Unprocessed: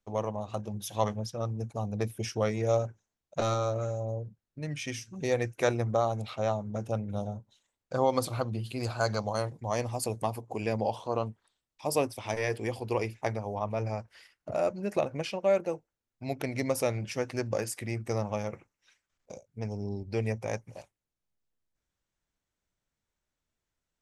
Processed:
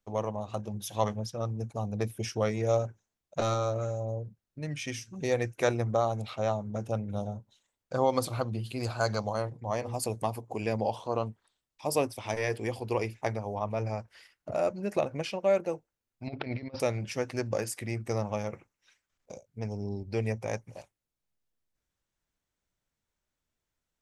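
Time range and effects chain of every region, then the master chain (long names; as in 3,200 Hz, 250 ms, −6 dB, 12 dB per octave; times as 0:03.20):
0:09.34–0:09.94: high-shelf EQ 3,500 Hz −9.5 dB + mains-hum notches 60/120/180/240/300/360/420/480 Hz
0:16.27–0:16.80: Butterworth low-pass 4,900 Hz 72 dB per octave + compressor whose output falls as the input rises −36 dBFS, ratio −0.5
whole clip: no processing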